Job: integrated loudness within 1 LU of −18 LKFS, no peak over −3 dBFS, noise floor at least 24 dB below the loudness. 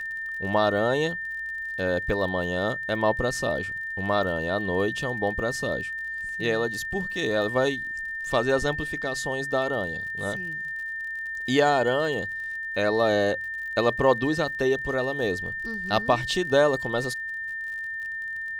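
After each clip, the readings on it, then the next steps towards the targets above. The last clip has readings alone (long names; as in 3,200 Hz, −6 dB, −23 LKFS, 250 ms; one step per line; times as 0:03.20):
crackle rate 42 per second; interfering tone 1,800 Hz; level of the tone −30 dBFS; integrated loudness −26.0 LKFS; sample peak −7.0 dBFS; target loudness −18.0 LKFS
→ click removal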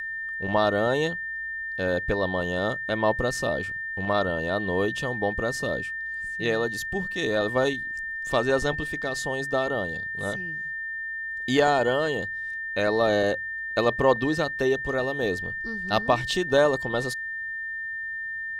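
crackle rate 0.11 per second; interfering tone 1,800 Hz; level of the tone −30 dBFS
→ notch filter 1,800 Hz, Q 30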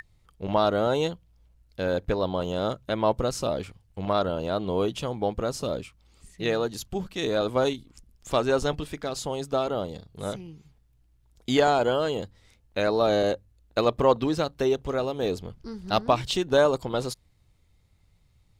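interfering tone none found; integrated loudness −27.0 LKFS; sample peak −7.0 dBFS; target loudness −18.0 LKFS
→ level +9 dB
brickwall limiter −3 dBFS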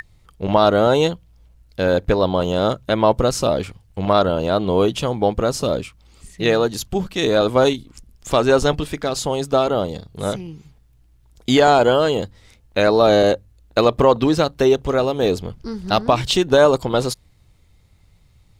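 integrated loudness −18.5 LKFS; sample peak −3.0 dBFS; background noise floor −54 dBFS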